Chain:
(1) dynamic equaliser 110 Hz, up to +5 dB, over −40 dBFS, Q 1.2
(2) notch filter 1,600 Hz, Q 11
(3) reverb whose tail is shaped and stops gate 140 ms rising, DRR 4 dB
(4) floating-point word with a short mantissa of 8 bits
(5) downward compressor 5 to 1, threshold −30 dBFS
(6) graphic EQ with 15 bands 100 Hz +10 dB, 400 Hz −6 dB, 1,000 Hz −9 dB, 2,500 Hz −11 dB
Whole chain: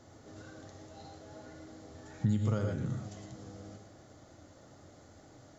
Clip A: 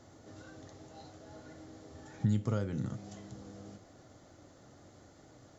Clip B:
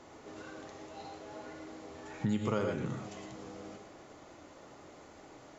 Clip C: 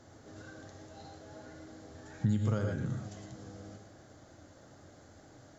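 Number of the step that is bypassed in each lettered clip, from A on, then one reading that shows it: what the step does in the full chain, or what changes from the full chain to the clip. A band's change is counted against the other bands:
3, change in integrated loudness −1.0 LU
6, change in integrated loudness −4.5 LU
2, 2 kHz band +3.0 dB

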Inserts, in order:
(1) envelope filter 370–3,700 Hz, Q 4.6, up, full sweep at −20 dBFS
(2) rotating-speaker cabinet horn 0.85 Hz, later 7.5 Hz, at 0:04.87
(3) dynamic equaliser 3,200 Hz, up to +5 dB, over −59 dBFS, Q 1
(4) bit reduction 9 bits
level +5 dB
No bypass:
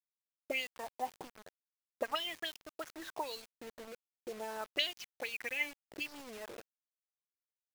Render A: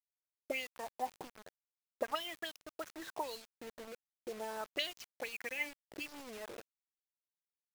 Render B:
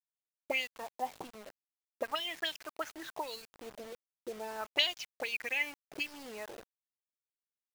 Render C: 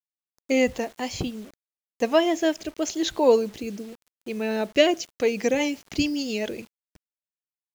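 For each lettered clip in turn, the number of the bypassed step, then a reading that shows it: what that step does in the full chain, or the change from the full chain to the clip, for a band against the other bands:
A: 3, change in crest factor −2.0 dB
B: 2, 4 kHz band +2.0 dB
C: 1, 250 Hz band +15.5 dB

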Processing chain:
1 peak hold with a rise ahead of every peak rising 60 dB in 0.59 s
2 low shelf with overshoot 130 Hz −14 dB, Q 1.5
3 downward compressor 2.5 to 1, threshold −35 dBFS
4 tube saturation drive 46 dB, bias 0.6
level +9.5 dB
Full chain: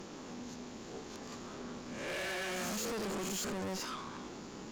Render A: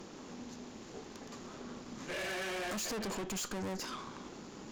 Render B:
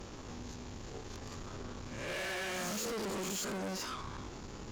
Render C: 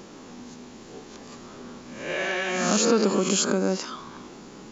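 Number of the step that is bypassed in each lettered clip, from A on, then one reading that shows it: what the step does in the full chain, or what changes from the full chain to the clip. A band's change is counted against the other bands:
1, change in crest factor +2.0 dB
2, 125 Hz band +3.0 dB
4, change in crest factor +12.0 dB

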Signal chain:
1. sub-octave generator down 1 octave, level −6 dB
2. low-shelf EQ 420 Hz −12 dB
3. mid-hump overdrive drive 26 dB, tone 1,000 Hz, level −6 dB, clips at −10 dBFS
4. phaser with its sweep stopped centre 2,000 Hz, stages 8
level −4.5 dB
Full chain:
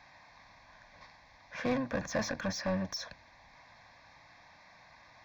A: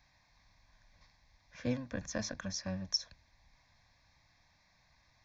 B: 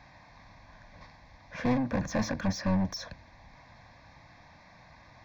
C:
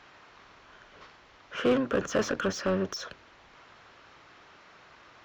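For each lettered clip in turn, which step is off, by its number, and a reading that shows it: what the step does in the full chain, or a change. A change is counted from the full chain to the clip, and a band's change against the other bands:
3, change in crest factor +1.5 dB
2, 125 Hz band +8.0 dB
4, 500 Hz band +4.0 dB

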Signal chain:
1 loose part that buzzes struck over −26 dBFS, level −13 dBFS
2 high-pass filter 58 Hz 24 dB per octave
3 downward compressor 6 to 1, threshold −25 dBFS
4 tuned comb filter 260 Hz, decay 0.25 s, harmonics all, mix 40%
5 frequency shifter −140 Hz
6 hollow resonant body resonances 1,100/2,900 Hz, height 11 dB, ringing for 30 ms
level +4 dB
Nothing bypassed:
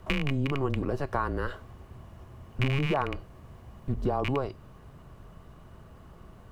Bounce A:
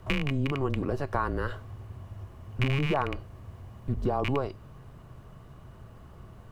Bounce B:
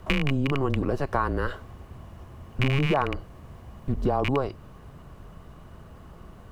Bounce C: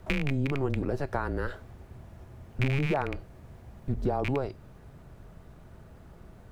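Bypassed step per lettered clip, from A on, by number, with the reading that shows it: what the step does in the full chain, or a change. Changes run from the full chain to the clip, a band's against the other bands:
2, change in crest factor −2.0 dB
4, change in integrated loudness +3.5 LU
6, 4 kHz band −5.0 dB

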